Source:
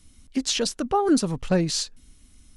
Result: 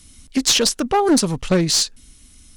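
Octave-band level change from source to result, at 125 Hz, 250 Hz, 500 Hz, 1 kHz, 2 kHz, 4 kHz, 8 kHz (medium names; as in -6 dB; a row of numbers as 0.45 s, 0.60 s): +4.5 dB, +4.5 dB, +5.0 dB, +5.0 dB, +8.0 dB, +9.5 dB, +10.0 dB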